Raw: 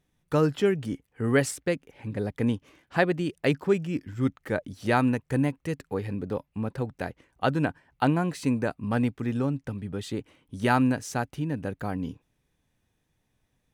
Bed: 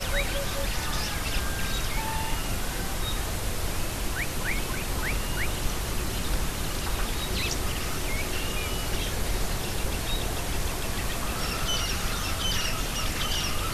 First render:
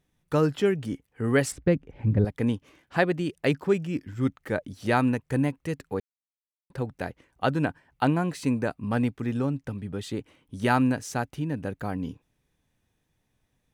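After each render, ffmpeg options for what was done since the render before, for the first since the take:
ffmpeg -i in.wav -filter_complex "[0:a]asettb=1/sr,asplit=3[link_01][link_02][link_03];[link_01]atrim=end=1.524[link_04];[link_02]atrim=start=1.52:end=2.25,asetpts=PTS-STARTPTS,afade=type=in:duration=0.004:curve=qsin,afade=type=out:start_time=0.726:duration=0.004:curve=qsin,aemphasis=mode=reproduction:type=riaa[link_05];[link_03]atrim=start=2.246[link_06];[link_04][link_05]acrossfade=duration=0.004:curve1=hsin:curve2=qsin[link_07];[link_07][link_06]acrossfade=duration=0.004:curve1=qsin:curve2=hsin,asplit=3[link_08][link_09][link_10];[link_08]atrim=end=6,asetpts=PTS-STARTPTS,afade=type=out:start_time=5.996:duration=0.004:curve=hsin[link_11];[link_09]atrim=start=6:end=6.7,asetpts=PTS-STARTPTS,volume=0[link_12];[link_10]atrim=start=6.7,asetpts=PTS-STARTPTS,afade=type=in:duration=0.004:curve=hsin[link_13];[link_11][link_12][link_13]concat=n=3:v=0:a=1" out.wav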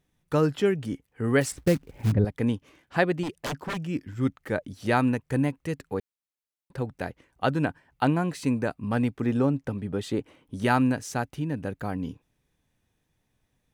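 ffmpeg -i in.wav -filter_complex "[0:a]asettb=1/sr,asplit=3[link_01][link_02][link_03];[link_01]atrim=end=1.414[link_04];[link_02]atrim=start=1.41:end=2.12,asetpts=PTS-STARTPTS,afade=type=in:duration=0.004:curve=qsin,afade=type=out:start_time=0.706:duration=0.004:curve=qsin,acrusher=bits=4:mode=log:mix=0:aa=0.000001[link_05];[link_03]atrim=start=2.116[link_06];[link_04][link_05]acrossfade=duration=0.004:curve1=hsin:curve2=qsin[link_07];[link_07][link_06]acrossfade=duration=0.004:curve1=qsin:curve2=hsin,asettb=1/sr,asplit=3[link_08][link_09][link_10];[link_08]atrim=end=3.234[link_11];[link_09]atrim=start=3.23:end=3.88,asetpts=PTS-STARTPTS,afade=type=in:duration=0.004:curve=qsin,afade=type=out:start_time=0.646:duration=0.004:curve=qsin,aeval=exprs='0.0531*(abs(mod(val(0)/0.0531+3,4)-2)-1)':channel_layout=same[link_12];[link_10]atrim=start=3.876[link_13];[link_11][link_12]acrossfade=duration=0.004:curve1=hsin:curve2=qsin[link_14];[link_14][link_13]acrossfade=duration=0.004:curve1=qsin:curve2=hsin,asettb=1/sr,asplit=3[link_15][link_16][link_17];[link_15]atrim=end=9.164[link_18];[link_16]atrim=start=9.16:end=10.63,asetpts=PTS-STARTPTS,afade=type=in:duration=0.004:curve=qsin,afade=type=out:start_time=1.466:duration=0.004:curve=qsin,equalizer=frequency=530:width_type=o:width=2.9:gain=5.5[link_19];[link_17]atrim=start=10.626[link_20];[link_18][link_19]acrossfade=duration=0.004:curve1=hsin:curve2=qsin[link_21];[link_21][link_20]acrossfade=duration=0.004:curve1=qsin:curve2=hsin" out.wav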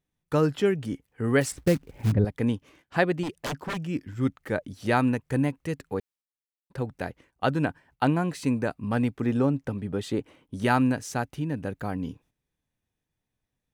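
ffmpeg -i in.wav -af "agate=range=-10dB:threshold=-57dB:ratio=16:detection=peak" out.wav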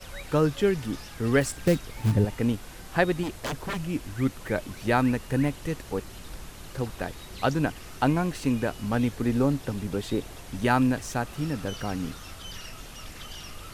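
ffmpeg -i in.wav -i bed.wav -filter_complex "[1:a]volume=-13dB[link_01];[0:a][link_01]amix=inputs=2:normalize=0" out.wav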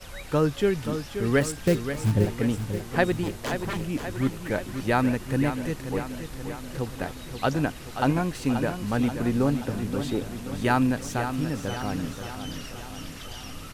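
ffmpeg -i in.wav -af "aecho=1:1:530|1060|1590|2120|2650|3180|3710:0.355|0.209|0.124|0.0729|0.043|0.0254|0.015" out.wav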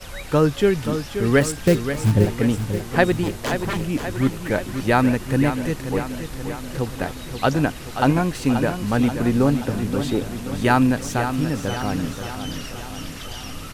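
ffmpeg -i in.wav -af "volume=5.5dB" out.wav

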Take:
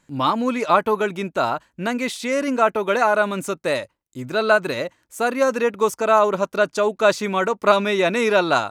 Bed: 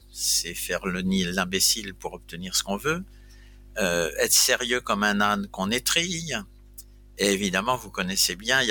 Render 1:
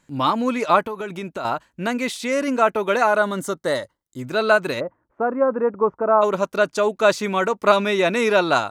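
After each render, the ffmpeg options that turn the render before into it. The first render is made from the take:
ffmpeg -i in.wav -filter_complex "[0:a]asettb=1/sr,asplit=3[link_01][link_02][link_03];[link_01]atrim=end=0.864[link_04];[link_02]atrim=start=0.86:end=1.45,asetpts=PTS-STARTPTS,afade=type=in:duration=0.004:curve=qsin,afade=type=out:start_time=0.586:duration=0.004:curve=qsin,acompressor=threshold=-25dB:ratio=6:attack=3.2:release=140:knee=1:detection=peak[link_05];[link_03]atrim=start=1.446[link_06];[link_04][link_05]acrossfade=duration=0.004:curve1=hsin:curve2=qsin[link_07];[link_07][link_06]acrossfade=duration=0.004:curve1=qsin:curve2=hsin,asettb=1/sr,asplit=3[link_08][link_09][link_10];[link_08]atrim=end=3.184[link_11];[link_09]atrim=start=3.18:end=4.2,asetpts=PTS-STARTPTS,afade=type=in:duration=0.004:curve=qsin,afade=type=out:start_time=1.016:duration=0.004:curve=qsin,asuperstop=centerf=2500:order=4:qfactor=3.6[link_12];[link_10]atrim=start=4.196[link_13];[link_11][link_12]acrossfade=duration=0.004:curve1=hsin:curve2=qsin[link_14];[link_14][link_13]acrossfade=duration=0.004:curve1=qsin:curve2=hsin,asplit=3[link_15][link_16][link_17];[link_15]afade=type=out:start_time=4.79:duration=0.02[link_18];[link_16]lowpass=frequency=1300:width=0.5412,lowpass=frequency=1300:width=1.3066,afade=type=in:start_time=4.79:duration=0.02,afade=type=out:start_time=6.21:duration=0.02[link_19];[link_17]afade=type=in:start_time=6.21:duration=0.02[link_20];[link_18][link_19][link_20]amix=inputs=3:normalize=0" out.wav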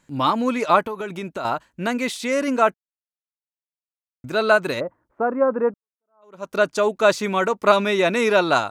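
ffmpeg -i in.wav -filter_complex "[0:a]asplit=4[link_01][link_02][link_03][link_04];[link_01]atrim=end=2.74,asetpts=PTS-STARTPTS,afade=type=out:start_time=2.736:duration=0.004:curve=hsin[link_05];[link_02]atrim=start=2.74:end=4.24,asetpts=PTS-STARTPTS,volume=0[link_06];[link_03]atrim=start=4.24:end=5.74,asetpts=PTS-STARTPTS,afade=type=in:duration=0.004:curve=hsin,afade=type=out:start_time=1.496:duration=0.004:curve=hsin[link_07];[link_04]atrim=start=5.74,asetpts=PTS-STARTPTS,afade=type=in:duration=0.77:curve=exp[link_08];[link_05][link_06][link_07][link_08]concat=n=4:v=0:a=1" out.wav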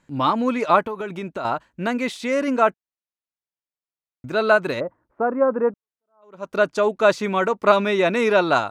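ffmpeg -i in.wav -af "aemphasis=mode=reproduction:type=cd" out.wav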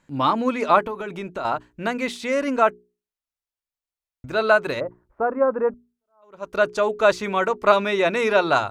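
ffmpeg -i in.wav -af "bandreject=frequency=60:width_type=h:width=6,bandreject=frequency=120:width_type=h:width=6,bandreject=frequency=180:width_type=h:width=6,bandreject=frequency=240:width_type=h:width=6,bandreject=frequency=300:width_type=h:width=6,bandreject=frequency=360:width_type=h:width=6,bandreject=frequency=420:width_type=h:width=6,asubboost=boost=7:cutoff=69" out.wav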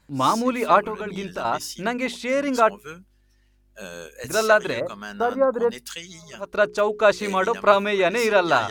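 ffmpeg -i in.wav -i bed.wav -filter_complex "[1:a]volume=-13dB[link_01];[0:a][link_01]amix=inputs=2:normalize=0" out.wav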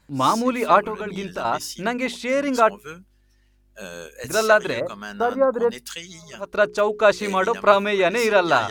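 ffmpeg -i in.wav -af "volume=1dB" out.wav

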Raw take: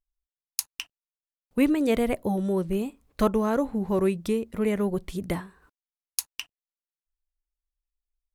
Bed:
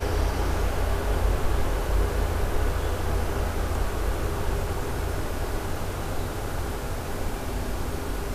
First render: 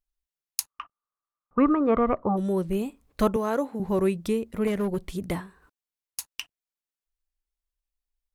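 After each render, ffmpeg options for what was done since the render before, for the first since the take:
ffmpeg -i in.wav -filter_complex "[0:a]asplit=3[link_01][link_02][link_03];[link_01]afade=type=out:start_time=0.67:duration=0.02[link_04];[link_02]lowpass=frequency=1200:width_type=q:width=15,afade=type=in:start_time=0.67:duration=0.02,afade=type=out:start_time=2.36:duration=0.02[link_05];[link_03]afade=type=in:start_time=2.36:duration=0.02[link_06];[link_04][link_05][link_06]amix=inputs=3:normalize=0,asettb=1/sr,asplit=3[link_07][link_08][link_09];[link_07]atrim=end=3.364[link_10];[link_08]atrim=start=3.36:end=3.8,asetpts=PTS-STARTPTS,afade=type=in:duration=0.004:curve=qsin,afade=type=out:start_time=0.436:duration=0.004:curve=qsin,highpass=280[link_11];[link_09]atrim=start=3.796[link_12];[link_10][link_11]acrossfade=duration=0.004:curve1=hsin:curve2=qsin[link_13];[link_13][link_12]acrossfade=duration=0.004:curve1=qsin:curve2=hsin,asettb=1/sr,asplit=3[link_14][link_15][link_16];[link_14]atrim=end=4.674[link_17];[link_15]atrim=start=4.67:end=6.27,asetpts=PTS-STARTPTS,afade=type=in:duration=0.004:curve=qsin,afade=type=out:start_time=1.596:duration=0.004:curve=qsin,asoftclip=type=hard:threshold=-21.5dB[link_18];[link_16]atrim=start=6.266[link_19];[link_17][link_18]acrossfade=duration=0.004:curve1=hsin:curve2=qsin[link_20];[link_20][link_19]acrossfade=duration=0.004:curve1=qsin:curve2=hsin" out.wav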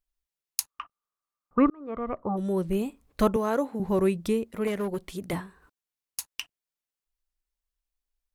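ffmpeg -i in.wav -filter_complex "[0:a]asettb=1/sr,asplit=3[link_01][link_02][link_03];[link_01]atrim=end=4.444[link_04];[link_02]atrim=start=4.44:end=5.33,asetpts=PTS-STARTPTS,afade=type=in:duration=0.004:curve=qsin,afade=type=out:start_time=0.886:duration=0.004:curve=qsin,lowshelf=frequency=180:gain=-10.5[link_05];[link_03]atrim=start=5.326[link_06];[link_04][link_05]acrossfade=duration=0.004:curve1=hsin:curve2=qsin[link_07];[link_07][link_06]acrossfade=duration=0.004:curve1=qsin:curve2=hsin,asplit=2[link_08][link_09];[link_08]atrim=end=1.7,asetpts=PTS-STARTPTS,afade=type=out:start_time=1.696:duration=0.004:curve=hsin[link_10];[link_09]atrim=start=1.7,asetpts=PTS-STARTPTS,afade=type=in:duration=0.99[link_11];[link_10][link_11]concat=n=2:v=0:a=1" out.wav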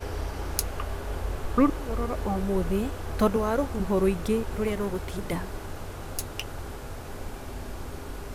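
ffmpeg -i in.wav -i bed.wav -filter_complex "[1:a]volume=-7.5dB[link_01];[0:a][link_01]amix=inputs=2:normalize=0" out.wav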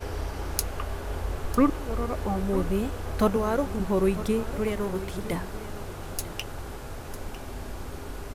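ffmpeg -i in.wav -af "aecho=1:1:951:0.178" out.wav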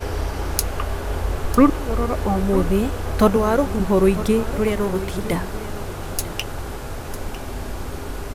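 ffmpeg -i in.wav -af "volume=7.5dB,alimiter=limit=-1dB:level=0:latency=1" out.wav

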